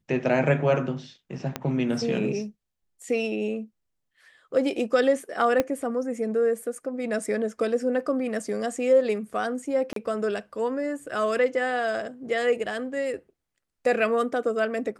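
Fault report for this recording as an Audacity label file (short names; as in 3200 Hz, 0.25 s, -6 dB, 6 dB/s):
1.560000	1.560000	pop -13 dBFS
5.600000	5.600000	pop -10 dBFS
9.930000	9.960000	gap 33 ms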